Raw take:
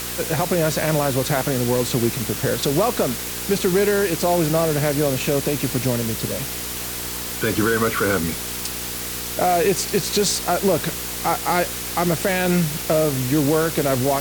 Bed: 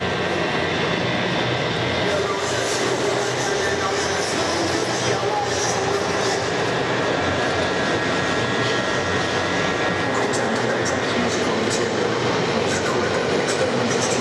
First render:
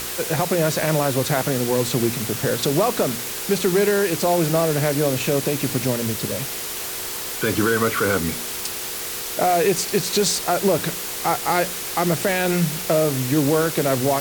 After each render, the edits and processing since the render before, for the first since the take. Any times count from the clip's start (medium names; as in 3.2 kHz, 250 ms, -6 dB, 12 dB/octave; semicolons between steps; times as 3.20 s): de-hum 60 Hz, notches 5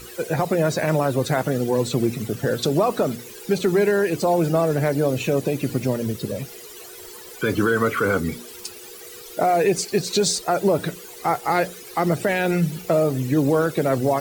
noise reduction 16 dB, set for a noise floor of -29 dBFS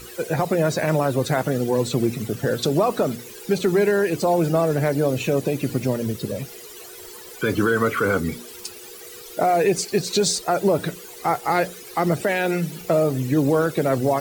12.21–12.81 s: high-pass 200 Hz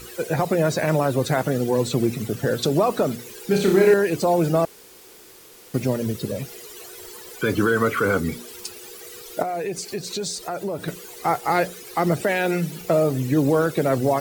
3.48–3.94 s: flutter echo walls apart 5.4 m, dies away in 0.49 s; 4.65–5.74 s: room tone; 9.42–10.88 s: compression 2:1, threshold -31 dBFS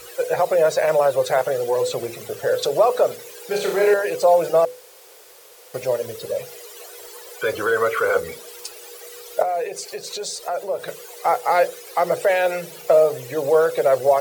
resonant low shelf 370 Hz -11.5 dB, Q 3; hum notches 50/100/150/200/250/300/350/400/450/500 Hz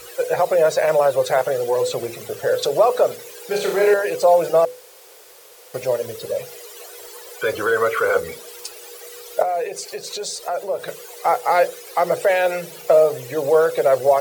trim +1 dB